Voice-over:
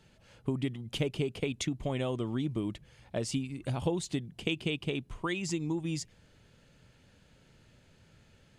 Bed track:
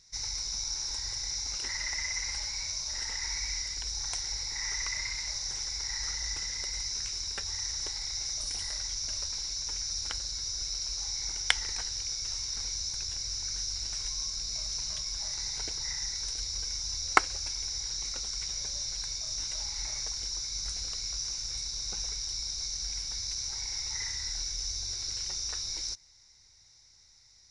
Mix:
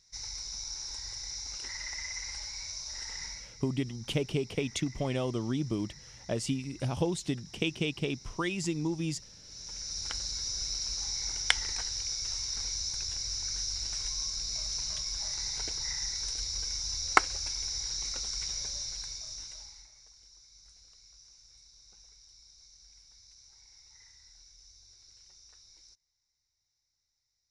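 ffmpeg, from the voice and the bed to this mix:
-filter_complex "[0:a]adelay=3150,volume=1.12[s0];[1:a]volume=4.47,afade=t=out:st=3.22:d=0.28:silence=0.223872,afade=t=in:st=9.43:d=0.8:silence=0.125893,afade=t=out:st=18.49:d=1.4:silence=0.0794328[s1];[s0][s1]amix=inputs=2:normalize=0"

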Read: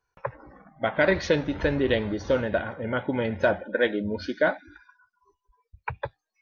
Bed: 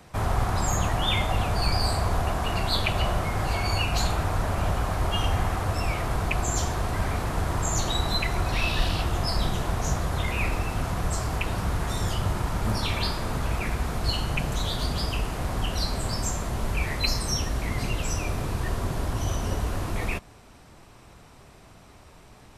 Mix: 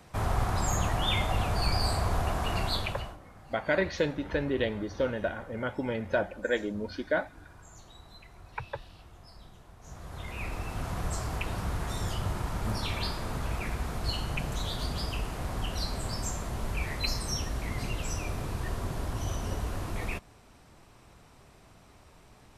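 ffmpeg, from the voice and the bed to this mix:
-filter_complex "[0:a]adelay=2700,volume=0.531[s0];[1:a]volume=7.08,afade=t=out:st=2.62:d=0.55:silence=0.0749894,afade=t=in:st=9.8:d=1.18:silence=0.0944061[s1];[s0][s1]amix=inputs=2:normalize=0"

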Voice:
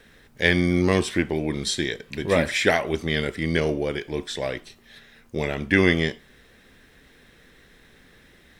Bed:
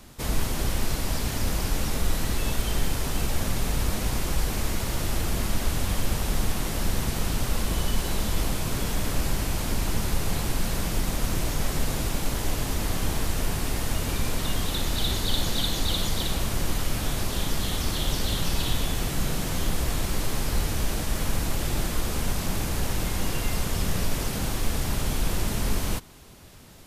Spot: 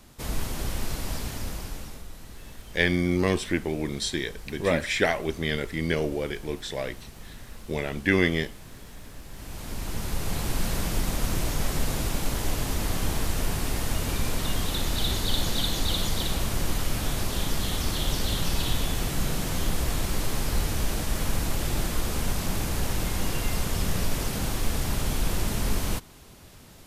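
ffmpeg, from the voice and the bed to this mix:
-filter_complex "[0:a]adelay=2350,volume=0.668[s0];[1:a]volume=4.47,afade=t=out:st=1.13:d=0.93:silence=0.211349,afade=t=in:st=9.29:d=1.34:silence=0.141254[s1];[s0][s1]amix=inputs=2:normalize=0"

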